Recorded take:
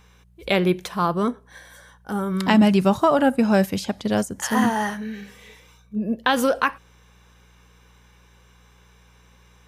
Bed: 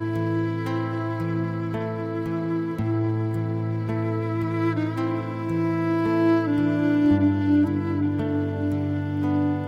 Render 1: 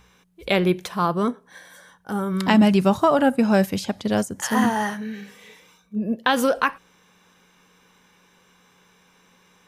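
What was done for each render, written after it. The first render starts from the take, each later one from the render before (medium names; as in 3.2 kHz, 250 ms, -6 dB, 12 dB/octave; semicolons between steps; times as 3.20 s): de-hum 60 Hz, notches 2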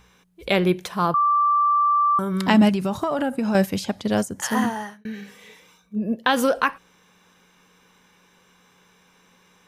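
1.14–2.19 s: bleep 1.17 kHz -15.5 dBFS; 2.69–3.55 s: compression 10:1, threshold -19 dBFS; 4.47–5.05 s: fade out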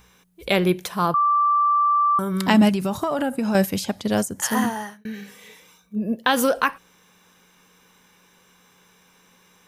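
treble shelf 8.7 kHz +10 dB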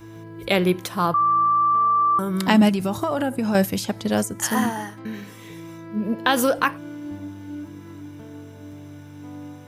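add bed -15 dB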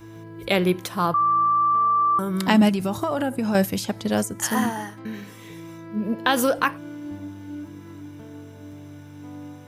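trim -1 dB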